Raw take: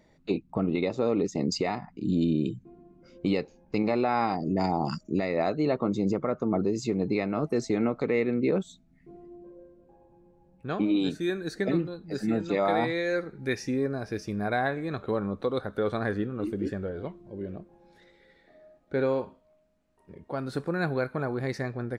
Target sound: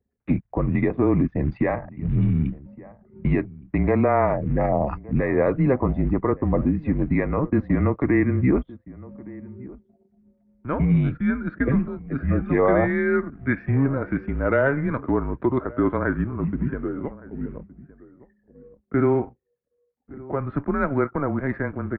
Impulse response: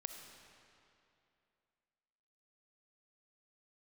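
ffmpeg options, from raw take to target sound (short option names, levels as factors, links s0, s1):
-filter_complex "[0:a]asettb=1/sr,asplit=3[s0][s1][s2];[s0]atrim=end=13.684[s3];[s1]atrim=start=13.68:end=15,asetpts=PTS-STARTPTS,afade=t=in:d=0.004:c=qsin,afade=t=out:st=1.316:d=0.004:c=qsin,aeval=exprs='0.168*(cos(1*acos(clip(val(0)/0.168,-1,1)))-cos(1*PI/2))+0.0133*(cos(5*acos(clip(val(0)/0.168,-1,1)))-cos(5*PI/2))':c=same[s4];[s2]atrim=start=14.996[s5];[s3][s4]acrossfade=d=0.004:c1=hsin:c2=qsin[s6];[s6][s5]acrossfade=d=0.004:c1=qsin:c2=hsin,anlmdn=0.00631,acrusher=bits=7:mode=log:mix=0:aa=0.000001,asplit=2[s7][s8];[s8]adelay=1166,volume=0.1,highshelf=f=4000:g=-26.2[s9];[s7][s9]amix=inputs=2:normalize=0,highpass=f=220:t=q:w=0.5412,highpass=f=220:t=q:w=1.307,lowpass=f=2300:t=q:w=0.5176,lowpass=f=2300:t=q:w=0.7071,lowpass=f=2300:t=q:w=1.932,afreqshift=-140,volume=2.24"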